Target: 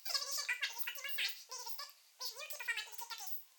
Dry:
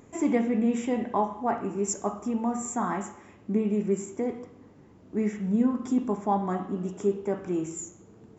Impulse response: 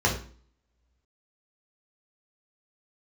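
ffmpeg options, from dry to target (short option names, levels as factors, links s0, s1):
-filter_complex "[0:a]asuperpass=centerf=5200:order=4:qfactor=0.63,acrossover=split=3800[s0][s1];[s1]acompressor=threshold=0.00355:ratio=4:attack=1:release=60[s2];[s0][s2]amix=inputs=2:normalize=0,asetrate=103194,aresample=44100,volume=2.99"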